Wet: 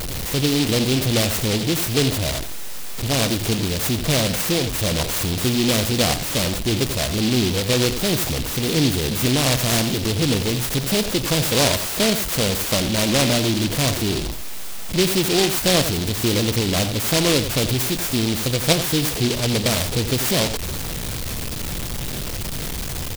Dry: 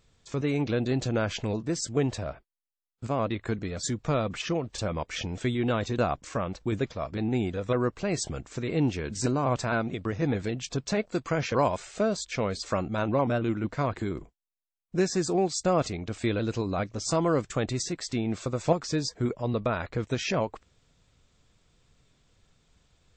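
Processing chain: zero-crossing step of -25 dBFS; outdoor echo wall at 15 m, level -10 dB; noise-modulated delay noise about 3500 Hz, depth 0.23 ms; gain +4 dB

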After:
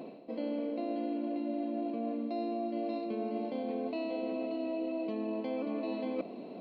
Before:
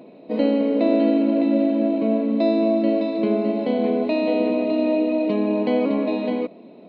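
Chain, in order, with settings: reverse; compressor 8:1, threshold -33 dBFS, peak gain reduction 18.5 dB; reverse; speed mistake 24 fps film run at 25 fps

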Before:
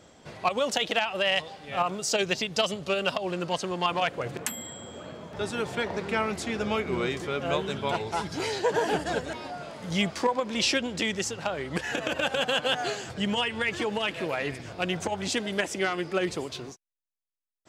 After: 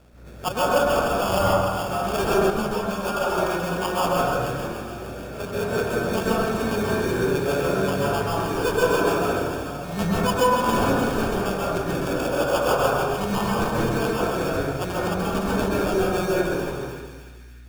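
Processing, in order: rotary speaker horn 1.2 Hz, later 7.5 Hz, at 4.82; hum 60 Hz, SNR 23 dB; sample-rate reducer 2000 Hz, jitter 0%; split-band echo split 1800 Hz, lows 0.104 s, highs 0.298 s, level -7.5 dB; reverb RT60 1.3 s, pre-delay 0.122 s, DRR -6 dB; 2.5–3.38 ensemble effect

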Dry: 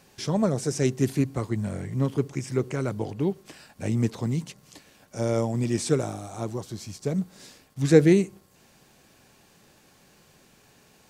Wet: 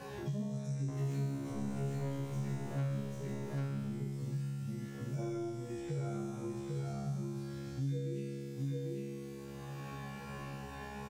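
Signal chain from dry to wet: median-filter separation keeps harmonic; 0.88–3.06 sample leveller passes 5; compressor, threshold -27 dBFS, peak gain reduction 15 dB; resonator 69 Hz, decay 1.4 s, harmonics all, mix 100%; echo 0.794 s -4 dB; three-band squash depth 100%; gain +5 dB

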